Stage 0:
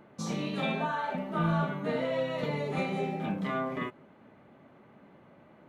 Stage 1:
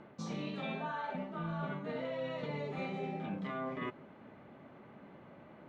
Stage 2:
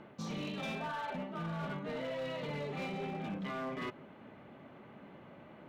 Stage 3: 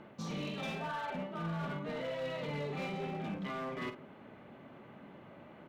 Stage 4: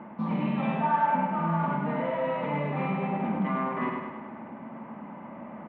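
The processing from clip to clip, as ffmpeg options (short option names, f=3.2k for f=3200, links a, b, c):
-af "areverse,acompressor=threshold=-38dB:ratio=6,areverse,lowpass=5.2k,volume=1.5dB"
-af "equalizer=f=3k:t=o:w=0.71:g=4,asoftclip=type=hard:threshold=-36dB,volume=1dB"
-filter_complex "[0:a]asplit=2[a][b];[b]adelay=48,volume=-10dB[c];[a][c]amix=inputs=2:normalize=0"
-af "highpass=100,equalizer=f=120:t=q:w=4:g=-9,equalizer=f=220:t=q:w=4:g=8,equalizer=f=410:t=q:w=4:g=-7,equalizer=f=950:t=q:w=4:g=10,equalizer=f=1.5k:t=q:w=4:g=-3,lowpass=f=2.2k:w=0.5412,lowpass=f=2.2k:w=1.3066,aecho=1:1:102|204|306|408|510|612|714|816:0.596|0.345|0.2|0.116|0.0674|0.0391|0.0227|0.0132,volume=7.5dB"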